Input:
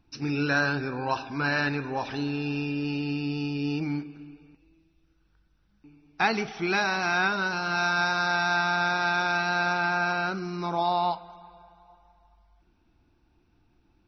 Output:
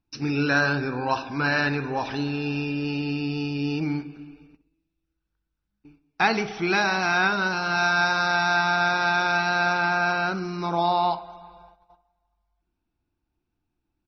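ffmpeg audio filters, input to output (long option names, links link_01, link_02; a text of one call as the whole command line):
ffmpeg -i in.wav -filter_complex "[0:a]agate=range=-17dB:threshold=-53dB:ratio=16:detection=peak,asplit=2[link_01][link_02];[link_02]adelay=64,lowpass=frequency=1000:poles=1,volume=-12dB,asplit=2[link_03][link_04];[link_04]adelay=64,lowpass=frequency=1000:poles=1,volume=0.5,asplit=2[link_05][link_06];[link_06]adelay=64,lowpass=frequency=1000:poles=1,volume=0.5,asplit=2[link_07][link_08];[link_08]adelay=64,lowpass=frequency=1000:poles=1,volume=0.5,asplit=2[link_09][link_10];[link_10]adelay=64,lowpass=frequency=1000:poles=1,volume=0.5[link_11];[link_01][link_03][link_05][link_07][link_09][link_11]amix=inputs=6:normalize=0,volume=3dB" out.wav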